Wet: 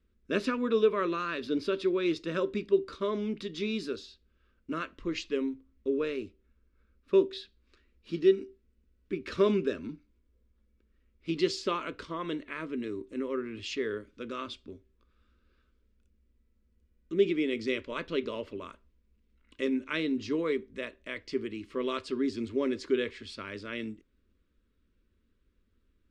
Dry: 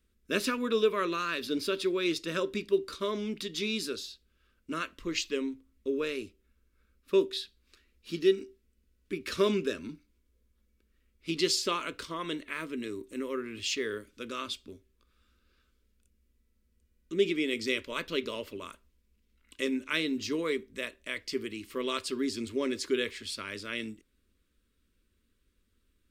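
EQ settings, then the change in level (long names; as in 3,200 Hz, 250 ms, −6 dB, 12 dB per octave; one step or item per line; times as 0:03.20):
low-pass filter 6,200 Hz 12 dB per octave
high-shelf EQ 2,200 Hz −10.5 dB
+2.0 dB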